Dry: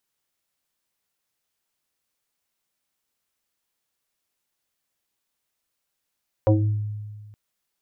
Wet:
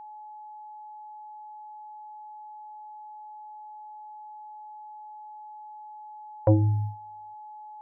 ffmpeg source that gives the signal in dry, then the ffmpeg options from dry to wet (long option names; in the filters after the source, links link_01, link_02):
-f lavfi -i "aevalsrc='0.251*pow(10,-3*t/1.66)*sin(2*PI*105*t+2.8*pow(10,-3*t/0.54)*sin(2*PI*2.04*105*t))':duration=0.87:sample_rate=44100"
-af "agate=range=-26dB:threshold=-30dB:ratio=16:detection=peak,aeval=exprs='val(0)+0.00891*sin(2*PI*850*n/s)':channel_layout=same"